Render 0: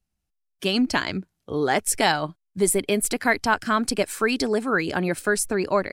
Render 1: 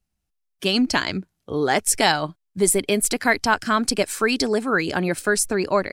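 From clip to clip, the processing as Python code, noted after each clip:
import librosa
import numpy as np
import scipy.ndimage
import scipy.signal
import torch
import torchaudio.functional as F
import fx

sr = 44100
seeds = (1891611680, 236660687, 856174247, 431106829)

y = fx.dynamic_eq(x, sr, hz=5700.0, q=0.89, threshold_db=-39.0, ratio=4.0, max_db=4)
y = y * librosa.db_to_amplitude(1.5)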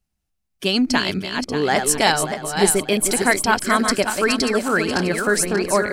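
y = fx.reverse_delay_fb(x, sr, ms=293, feedback_pct=56, wet_db=-6.0)
y = y * librosa.db_to_amplitude(1.0)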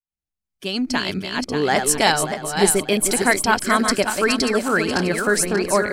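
y = fx.fade_in_head(x, sr, length_s=1.38)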